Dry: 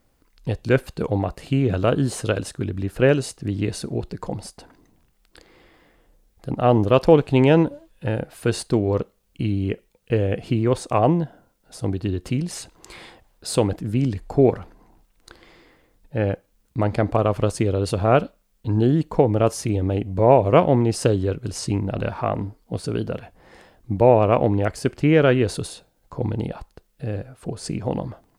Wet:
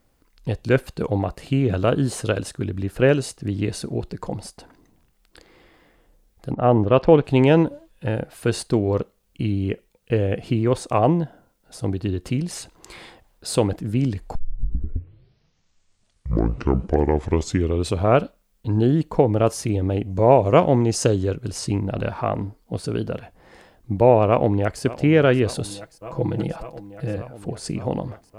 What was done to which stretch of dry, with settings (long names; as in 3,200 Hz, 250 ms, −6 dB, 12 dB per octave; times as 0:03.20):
0:06.53–0:07.23: low-pass filter 1,700 Hz → 4,100 Hz
0:14.35: tape start 3.88 s
0:20.10–0:21.36: parametric band 6,500 Hz +9.5 dB 0.45 octaves
0:24.27–0:24.81: delay throw 580 ms, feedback 85%, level −16.5 dB
0:25.70–0:27.18: comb filter 6.1 ms, depth 70%